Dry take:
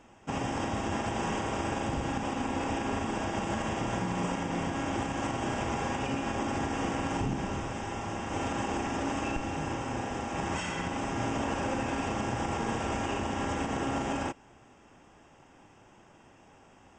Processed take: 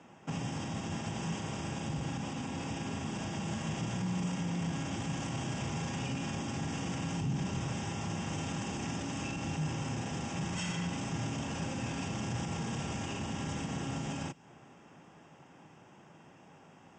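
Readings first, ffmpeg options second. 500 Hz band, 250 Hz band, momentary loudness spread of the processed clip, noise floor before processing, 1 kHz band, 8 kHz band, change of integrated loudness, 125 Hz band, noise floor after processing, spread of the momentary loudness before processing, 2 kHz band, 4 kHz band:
-9.0 dB, -3.5 dB, 3 LU, -58 dBFS, -9.5 dB, -0.5 dB, -4.0 dB, +1.0 dB, -58 dBFS, 3 LU, -6.0 dB, -1.5 dB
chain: -filter_complex "[0:a]equalizer=f=160:t=o:w=0.49:g=9.5,dynaudnorm=f=270:g=31:m=1.78,alimiter=limit=0.0841:level=0:latency=1:release=11,acrossover=split=180|3000[s0][s1][s2];[s1]acompressor=threshold=0.00891:ratio=6[s3];[s0][s3][s2]amix=inputs=3:normalize=0,highpass=110,lowpass=7800"

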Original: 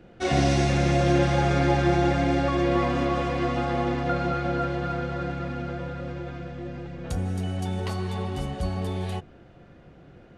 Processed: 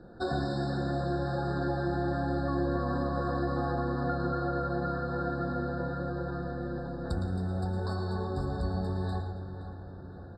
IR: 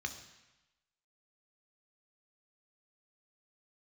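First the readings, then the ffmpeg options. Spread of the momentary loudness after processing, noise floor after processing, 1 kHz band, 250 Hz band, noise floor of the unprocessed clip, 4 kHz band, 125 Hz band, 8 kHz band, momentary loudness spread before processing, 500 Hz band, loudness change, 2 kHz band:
6 LU, -44 dBFS, -6.5 dB, -6.0 dB, -51 dBFS, -11.5 dB, -6.0 dB, under -15 dB, 13 LU, -6.5 dB, -7.0 dB, -8.0 dB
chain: -filter_complex "[0:a]lowpass=6500,acompressor=threshold=0.0355:ratio=5,asplit=2[s0][s1];[s1]adelay=521,lowpass=f=3000:p=1,volume=0.299,asplit=2[s2][s3];[s3]adelay=521,lowpass=f=3000:p=1,volume=0.53,asplit=2[s4][s5];[s5]adelay=521,lowpass=f=3000:p=1,volume=0.53,asplit=2[s6][s7];[s7]adelay=521,lowpass=f=3000:p=1,volume=0.53,asplit=2[s8][s9];[s9]adelay=521,lowpass=f=3000:p=1,volume=0.53,asplit=2[s10][s11];[s11]adelay=521,lowpass=f=3000:p=1,volume=0.53[s12];[s0][s2][s4][s6][s8][s10][s12]amix=inputs=7:normalize=0,asplit=2[s13][s14];[1:a]atrim=start_sample=2205,adelay=111[s15];[s14][s15]afir=irnorm=-1:irlink=0,volume=0.531[s16];[s13][s16]amix=inputs=2:normalize=0,afftfilt=real='re*eq(mod(floor(b*sr/1024/1800),2),0)':imag='im*eq(mod(floor(b*sr/1024/1800),2),0)':win_size=1024:overlap=0.75"

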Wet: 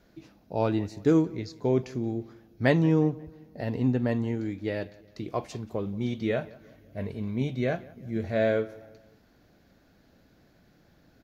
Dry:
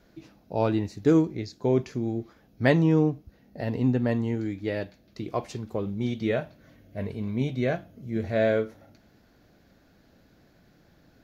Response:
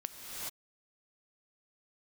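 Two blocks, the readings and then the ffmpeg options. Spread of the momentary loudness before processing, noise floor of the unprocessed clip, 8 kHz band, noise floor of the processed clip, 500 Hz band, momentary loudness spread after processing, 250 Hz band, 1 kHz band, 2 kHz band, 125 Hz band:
13 LU, -61 dBFS, no reading, -62 dBFS, -1.5 dB, 14 LU, -1.5 dB, -1.5 dB, -1.5 dB, -1.5 dB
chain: -filter_complex "[0:a]asplit=2[s0][s1];[s1]adelay=179,lowpass=f=3700:p=1,volume=0.0841,asplit=2[s2][s3];[s3]adelay=179,lowpass=f=3700:p=1,volume=0.45,asplit=2[s4][s5];[s5]adelay=179,lowpass=f=3700:p=1,volume=0.45[s6];[s0][s2][s4][s6]amix=inputs=4:normalize=0,volume=0.841"

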